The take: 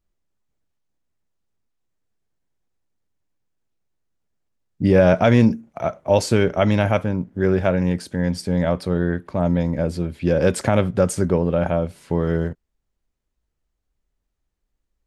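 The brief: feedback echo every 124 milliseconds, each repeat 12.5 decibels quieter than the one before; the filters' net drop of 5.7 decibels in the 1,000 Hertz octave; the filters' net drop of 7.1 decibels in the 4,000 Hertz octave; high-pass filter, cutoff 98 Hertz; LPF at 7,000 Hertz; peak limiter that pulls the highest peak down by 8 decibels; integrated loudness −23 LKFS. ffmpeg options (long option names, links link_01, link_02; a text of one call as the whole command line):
ffmpeg -i in.wav -af "highpass=98,lowpass=7000,equalizer=frequency=1000:width_type=o:gain=-8.5,equalizer=frequency=4000:width_type=o:gain=-8.5,alimiter=limit=-13dB:level=0:latency=1,aecho=1:1:124|248|372:0.237|0.0569|0.0137,volume=1dB" out.wav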